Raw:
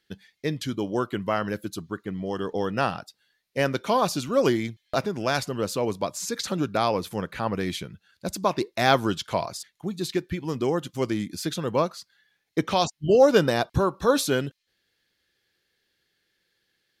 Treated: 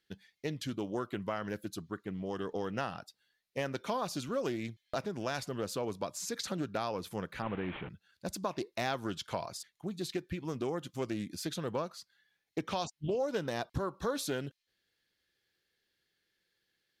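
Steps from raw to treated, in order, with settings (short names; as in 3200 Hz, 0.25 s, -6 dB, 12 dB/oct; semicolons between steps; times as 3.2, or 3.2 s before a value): 7.42–7.89 delta modulation 16 kbps, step -31 dBFS; compressor 4:1, threshold -24 dBFS, peak gain reduction 11 dB; Doppler distortion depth 0.29 ms; gain -7 dB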